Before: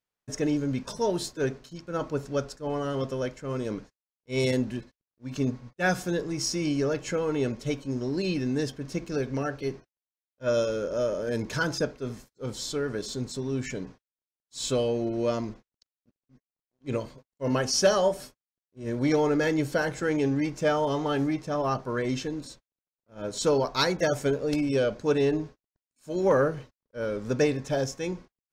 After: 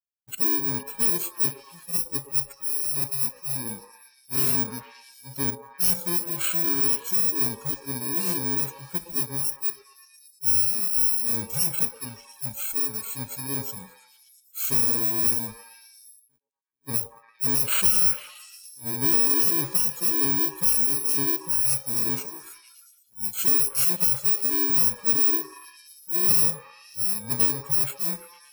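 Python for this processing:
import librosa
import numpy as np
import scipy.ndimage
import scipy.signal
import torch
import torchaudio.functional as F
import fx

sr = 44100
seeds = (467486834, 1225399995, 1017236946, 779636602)

y = fx.bit_reversed(x, sr, seeds[0], block=64)
y = fx.high_shelf(y, sr, hz=8100.0, db=10.0)
y = 10.0 ** (-15.5 / 20.0) * np.tanh(y / 10.0 ** (-15.5 / 20.0))
y = fx.noise_reduce_blind(y, sr, reduce_db=17)
y = fx.echo_stepped(y, sr, ms=115, hz=590.0, octaves=0.7, feedback_pct=70, wet_db=-4)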